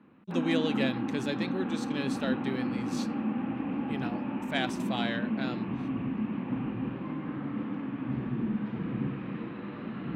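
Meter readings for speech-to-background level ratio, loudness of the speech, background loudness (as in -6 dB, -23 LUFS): -2.0 dB, -35.5 LUFS, -33.5 LUFS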